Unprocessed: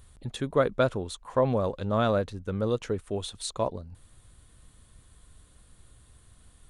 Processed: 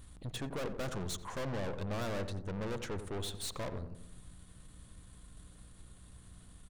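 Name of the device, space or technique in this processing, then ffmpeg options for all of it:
valve amplifier with mains hum: -filter_complex "[0:a]asettb=1/sr,asplit=3[a][b][c];[a]atrim=end=0.834[d];[b]atrim=start=0.83:end=1.38,asetpts=PTS-STARTPTS,afade=t=in:d=0.004:c=qsin,afade=t=out:st=0.546:d=0.004:c=qsin,equalizer=f=160:t=o:w=0.67:g=9,equalizer=f=1.6k:t=o:w=0.67:g=5,equalizer=f=6.3k:t=o:w=0.67:g=10[e];[c]atrim=start=1.376[f];[d][e]acrossfade=d=0.004:c1=hsin:c2=qsin[g];[g][f]acrossfade=d=0.004:c1=qsin:c2=hsin,aeval=exprs='(tanh(79.4*val(0)+0.5)-tanh(0.5))/79.4':c=same,aeval=exprs='val(0)+0.001*(sin(2*PI*60*n/s)+sin(2*PI*2*60*n/s)/2+sin(2*PI*3*60*n/s)/3+sin(2*PI*4*60*n/s)/4+sin(2*PI*5*60*n/s)/5)':c=same,asplit=2[h][i];[i]adelay=89,lowpass=f=1.1k:p=1,volume=-8dB,asplit=2[j][k];[k]adelay=89,lowpass=f=1.1k:p=1,volume=0.54,asplit=2[l][m];[m]adelay=89,lowpass=f=1.1k:p=1,volume=0.54,asplit=2[n][o];[o]adelay=89,lowpass=f=1.1k:p=1,volume=0.54,asplit=2[p][q];[q]adelay=89,lowpass=f=1.1k:p=1,volume=0.54,asplit=2[r][s];[s]adelay=89,lowpass=f=1.1k:p=1,volume=0.54[t];[h][j][l][n][p][r][t]amix=inputs=7:normalize=0,volume=1.5dB"

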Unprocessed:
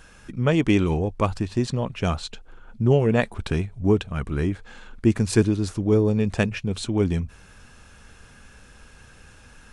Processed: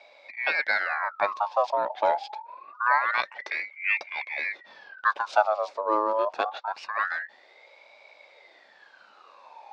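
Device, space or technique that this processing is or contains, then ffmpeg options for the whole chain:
voice changer toy: -filter_complex "[0:a]asettb=1/sr,asplit=3[a][b][c];[a]atrim=end=5.104[d];[b]atrim=start=5.1:end=6.99,asetpts=PTS-STARTPTS,afade=t=in:d=0.004:c=qsin,afade=t=out:st=1.886:d=0.004:c=qsin,highpass=200[e];[c]atrim=start=6.986[f];[d][e]acrossfade=d=0.004:c1=hsin:c2=qsin[g];[g][f]acrossfade=d=0.004:c1=qsin:c2=hsin,aeval=exprs='val(0)*sin(2*PI*1500*n/s+1500*0.5/0.25*sin(2*PI*0.25*n/s))':c=same,highpass=520,equalizer=f=580:t=q:w=4:g=8,equalizer=f=850:t=q:w=4:g=6,equalizer=f=1.3k:t=q:w=4:g=-4,equalizer=f=1.9k:t=q:w=4:g=-7,equalizer=f=3.1k:t=q:w=4:g=-8,lowpass=f=4.4k:w=0.5412,lowpass=f=4.4k:w=1.3066"

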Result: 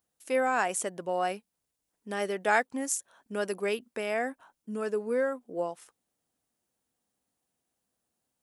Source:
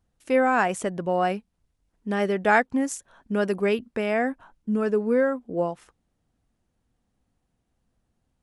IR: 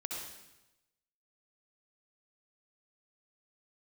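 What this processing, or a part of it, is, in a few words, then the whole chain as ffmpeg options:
filter by subtraction: -filter_complex "[0:a]asplit=2[a][b];[b]lowpass=510,volume=-1[c];[a][c]amix=inputs=2:normalize=0,aemphasis=mode=production:type=75kf,volume=-8dB"

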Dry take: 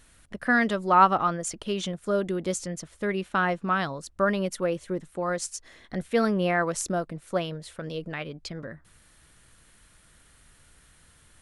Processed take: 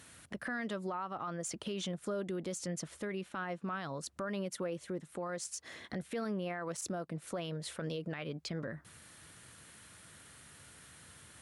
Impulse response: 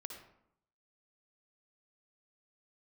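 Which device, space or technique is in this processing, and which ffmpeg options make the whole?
podcast mastering chain: -af "highpass=f=84:w=0.5412,highpass=f=84:w=1.3066,deesser=0.55,acompressor=threshold=-38dB:ratio=4,alimiter=level_in=9dB:limit=-24dB:level=0:latency=1:release=25,volume=-9dB,volume=3.5dB" -ar 44100 -c:a libmp3lame -b:a 112k

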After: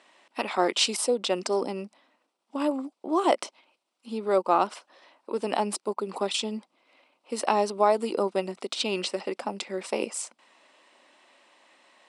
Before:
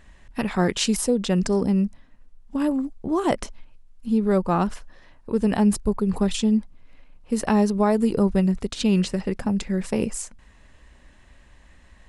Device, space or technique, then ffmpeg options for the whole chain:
phone speaker on a table: -af "highpass=f=360:w=0.5412,highpass=f=360:w=1.3066,equalizer=f=440:t=q:w=4:g=-7,equalizer=f=1.7k:t=q:w=4:g=-10,equalizer=f=6.7k:t=q:w=4:g=-8,lowpass=f=9k:w=0.5412,lowpass=f=9k:w=1.3066,volume=3dB"

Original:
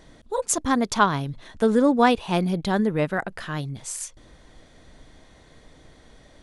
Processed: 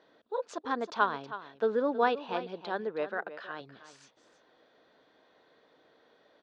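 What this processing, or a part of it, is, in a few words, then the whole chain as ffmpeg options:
phone earpiece: -filter_complex "[0:a]asettb=1/sr,asplit=3[a][b][c];[a]atrim=end=2.334[d];[b]atrim=start=2.33:end=3.61,asetpts=PTS-STARTPTS,afade=t=in:d=0.004:c=qsin,afade=t=out:st=1.276:d=0.004:c=qsin,equalizer=f=80:t=o:w=1.5:g=-14[e];[c]atrim=start=3.606[f];[d][e]acrossfade=d=0.004:c1=hsin:c2=qsin[g];[g][f]acrossfade=d=0.004:c1=qsin:c2=hsin,highpass=390,equalizer=f=450:t=q:w=4:g=4,equalizer=f=1.5k:t=q:w=4:g=3,equalizer=f=2.1k:t=q:w=4:g=-7,equalizer=f=3.2k:t=q:w=4:g=-3,lowpass=f=4.1k:w=0.5412,lowpass=f=4.1k:w=1.3066,aecho=1:1:319:0.211,volume=-8dB"

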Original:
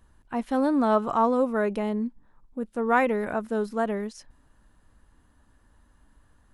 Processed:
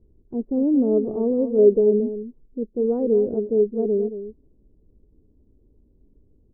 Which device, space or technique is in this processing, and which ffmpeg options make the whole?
under water: -filter_complex "[0:a]asettb=1/sr,asplit=3[a][b][c];[a]atrim=end=1.584[d];[b]atrim=start=1.58:end=2,asetpts=PTS-STARTPTS,afade=t=in:d=0.004:c=qsin,afade=t=out:st=0.416:d=0.004:c=qsin,equalizer=f=610:t=o:w=1.7:g=6[e];[c]atrim=start=1.996[f];[d][e]acrossfade=d=0.004:c1=hsin:c2=qsin[g];[g][f]acrossfade=d=0.004:c1=qsin:c2=hsin,lowpass=f=440:w=0.5412,lowpass=f=440:w=1.3066,equalizer=f=410:t=o:w=0.55:g=11.5,aecho=1:1:225:0.282,volume=2dB"

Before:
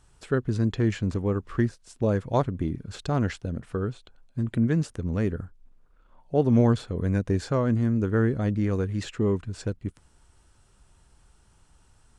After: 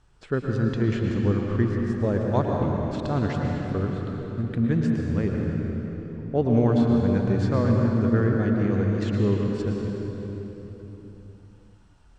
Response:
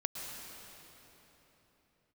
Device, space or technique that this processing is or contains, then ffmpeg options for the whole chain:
swimming-pool hall: -filter_complex "[1:a]atrim=start_sample=2205[a];[0:a][a]afir=irnorm=-1:irlink=0,lowpass=6k,highshelf=f=5.3k:g=-4.5"

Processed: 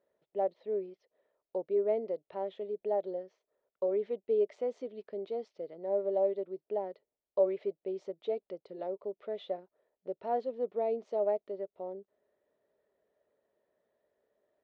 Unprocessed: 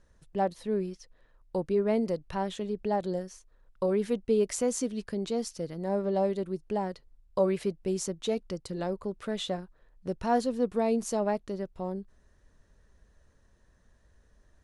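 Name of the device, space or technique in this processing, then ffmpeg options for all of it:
phone earpiece: -af "highpass=380,equalizer=f=410:t=q:w=4:g=8,equalizer=f=610:t=q:w=4:g=10,equalizer=f=1.1k:t=q:w=4:g=-6,equalizer=f=1.6k:t=q:w=4:g=-10,equalizer=f=2.7k:t=q:w=4:g=-6,lowpass=f=3.1k:w=0.5412,lowpass=f=3.1k:w=1.3066,volume=-8dB"

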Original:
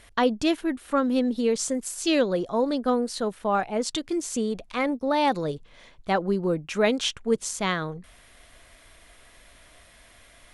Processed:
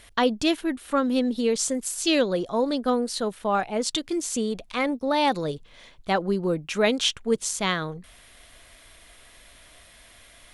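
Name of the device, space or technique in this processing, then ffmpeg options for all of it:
presence and air boost: -af "equalizer=f=3.5k:t=o:w=1.1:g=3.5,highshelf=f=9.1k:g=6.5"

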